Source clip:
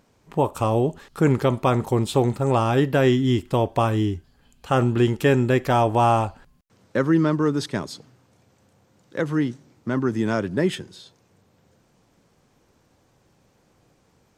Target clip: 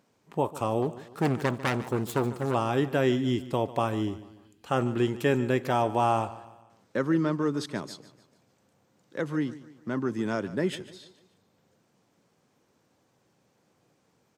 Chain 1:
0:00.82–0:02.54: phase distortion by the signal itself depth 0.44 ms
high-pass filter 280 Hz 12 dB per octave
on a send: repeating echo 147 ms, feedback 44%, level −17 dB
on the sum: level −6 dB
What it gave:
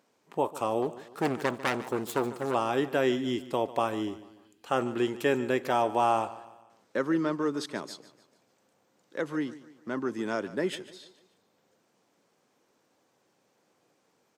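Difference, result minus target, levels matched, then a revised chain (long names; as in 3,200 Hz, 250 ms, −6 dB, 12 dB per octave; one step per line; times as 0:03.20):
125 Hz band −8.5 dB
0:00.82–0:02.54: phase distortion by the signal itself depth 0.44 ms
high-pass filter 130 Hz 12 dB per octave
on a send: repeating echo 147 ms, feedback 44%, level −17 dB
on the sum: level −6 dB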